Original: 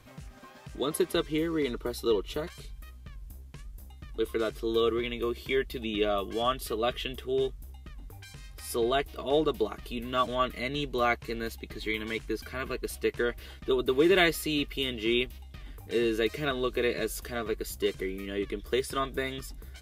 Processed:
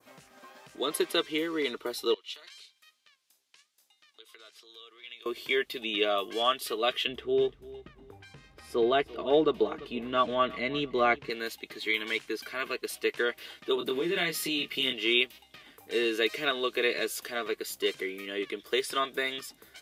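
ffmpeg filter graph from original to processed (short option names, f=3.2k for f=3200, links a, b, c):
-filter_complex "[0:a]asettb=1/sr,asplit=3[a][b][c];[a]atrim=end=2.144[d];[b]atrim=start=2.14:end=5.26,asetpts=PTS-STARTPTS,afade=t=in:d=0.004:c=qsin,afade=t=out:st=3.116:d=0.004:c=qsin,acompressor=threshold=-34dB:ratio=6:attack=3.2:release=140:knee=1:detection=peak,bandpass=f=4.3k:t=q:w=1[e];[c]atrim=start=5.256[f];[d][e]acrossfade=d=0.004:c1=hsin:c2=qsin[g];[g][f]acrossfade=d=0.004:c1=qsin:c2=hsin,asettb=1/sr,asplit=3[h][i][j];[h]atrim=end=7.074[k];[i]atrim=start=7.07:end=11.3,asetpts=PTS-STARTPTS,afade=t=in:d=0.004:c=qsin,afade=t=out:st=4.226:d=0.004:c=qsin,aemphasis=mode=reproduction:type=riaa,aecho=1:1:342|684:0.112|0.0314,atrim=end_sample=186543[l];[j]atrim=start=11.296[m];[k][l]acrossfade=d=0.004:c1=hsin:c2=qsin[n];[n][m]acrossfade=d=0.004:c1=qsin:c2=hsin,asettb=1/sr,asplit=3[o][p][q];[o]atrim=end=13.754[r];[p]atrim=start=13.75:end=14.93,asetpts=PTS-STARTPTS,afade=t=in:d=0.004:c=qsin,afade=t=out:st=1.176:d=0.004:c=qsin,equalizer=f=170:t=o:w=0.75:g=15,acompressor=threshold=-26dB:ratio=6:attack=3.2:release=140:knee=1:detection=peak,asplit=2[s][t];[t]adelay=23,volume=-5dB[u];[s][u]amix=inputs=2:normalize=0,atrim=end_sample=52038[v];[q]atrim=start=14.926[w];[r][v]acrossfade=d=0.004:c1=hsin:c2=qsin[x];[x][w]acrossfade=d=0.004:c1=qsin:c2=hsin,adynamicequalizer=threshold=0.00562:dfrequency=3000:dqfactor=0.73:tfrequency=3000:tqfactor=0.73:attack=5:release=100:ratio=0.375:range=3:mode=boostabove:tftype=bell,highpass=330"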